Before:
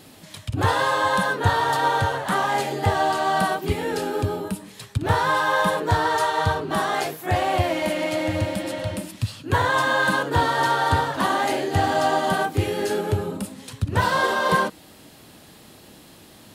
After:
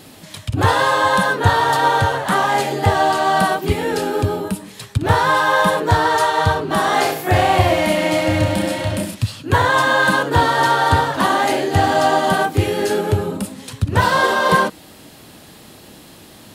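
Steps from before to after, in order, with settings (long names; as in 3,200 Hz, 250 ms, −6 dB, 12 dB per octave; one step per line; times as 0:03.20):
0:06.81–0:09.15: reverse bouncing-ball delay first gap 30 ms, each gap 1.15×, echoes 5
level +5.5 dB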